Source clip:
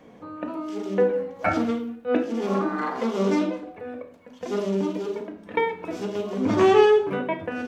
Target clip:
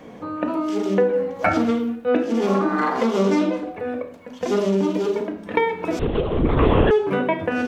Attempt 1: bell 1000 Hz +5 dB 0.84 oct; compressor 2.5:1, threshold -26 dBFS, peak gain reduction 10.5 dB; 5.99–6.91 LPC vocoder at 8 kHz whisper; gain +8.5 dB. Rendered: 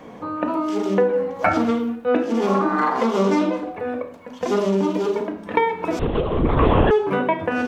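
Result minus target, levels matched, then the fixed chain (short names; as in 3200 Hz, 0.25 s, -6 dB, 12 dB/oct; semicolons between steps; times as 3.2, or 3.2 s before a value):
1000 Hz band +2.5 dB
compressor 2.5:1, threshold -26 dBFS, peak gain reduction 10 dB; 5.99–6.91 LPC vocoder at 8 kHz whisper; gain +8.5 dB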